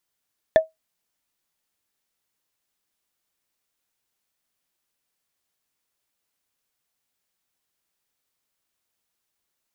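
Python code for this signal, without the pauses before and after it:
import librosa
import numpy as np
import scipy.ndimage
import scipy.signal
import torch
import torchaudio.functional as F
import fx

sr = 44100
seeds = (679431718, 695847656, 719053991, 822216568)

y = fx.strike_wood(sr, length_s=0.45, level_db=-6.5, body='bar', hz=639.0, decay_s=0.16, tilt_db=9.5, modes=5)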